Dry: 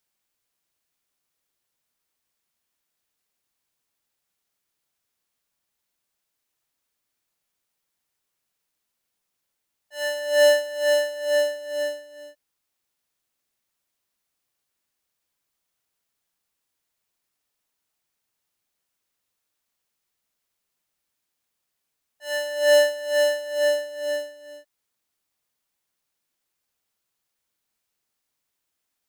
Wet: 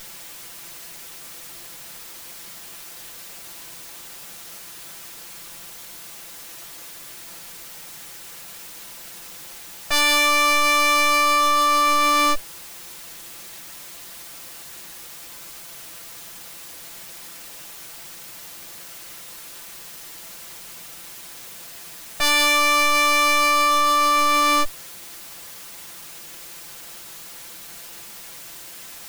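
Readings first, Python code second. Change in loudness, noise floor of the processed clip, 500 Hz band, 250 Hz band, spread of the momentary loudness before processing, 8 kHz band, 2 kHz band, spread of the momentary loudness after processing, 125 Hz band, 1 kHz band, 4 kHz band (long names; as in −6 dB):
+5.5 dB, −40 dBFS, −7.5 dB, +17.0 dB, 13 LU, +12.5 dB, +9.0 dB, 20 LU, can't be measured, +24.5 dB, +10.0 dB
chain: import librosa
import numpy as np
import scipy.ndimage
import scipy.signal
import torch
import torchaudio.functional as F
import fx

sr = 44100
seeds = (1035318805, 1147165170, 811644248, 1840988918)

y = fx.lower_of_two(x, sr, delay_ms=5.9)
y = fx.env_flatten(y, sr, amount_pct=100)
y = F.gain(torch.from_numpy(y), 2.0).numpy()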